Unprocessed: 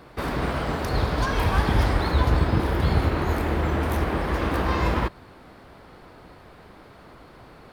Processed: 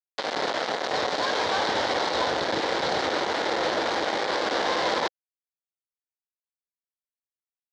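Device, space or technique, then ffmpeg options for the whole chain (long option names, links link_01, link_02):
hand-held game console: -af "acrusher=bits=3:mix=0:aa=0.000001,highpass=420,equalizer=frequency=520:width_type=q:width=4:gain=5,equalizer=frequency=770:width_type=q:width=4:gain=3,equalizer=frequency=1200:width_type=q:width=4:gain=-4,equalizer=frequency=2600:width_type=q:width=4:gain=-8,equalizer=frequency=3900:width_type=q:width=4:gain=3,lowpass=frequency=5200:width=0.5412,lowpass=frequency=5200:width=1.3066"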